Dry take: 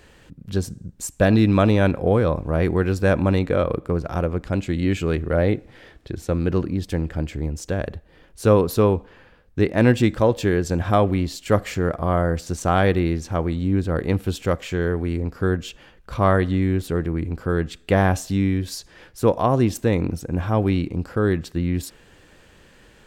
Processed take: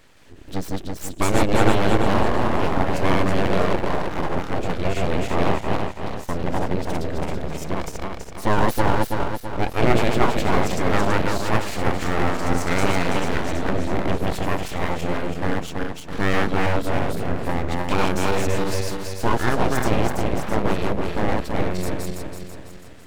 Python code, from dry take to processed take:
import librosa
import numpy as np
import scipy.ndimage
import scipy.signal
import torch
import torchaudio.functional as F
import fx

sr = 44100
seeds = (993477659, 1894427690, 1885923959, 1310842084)

y = fx.reverse_delay_fb(x, sr, ms=165, feedback_pct=68, wet_db=-0.5)
y = np.abs(y)
y = F.gain(torch.from_numpy(y), -1.5).numpy()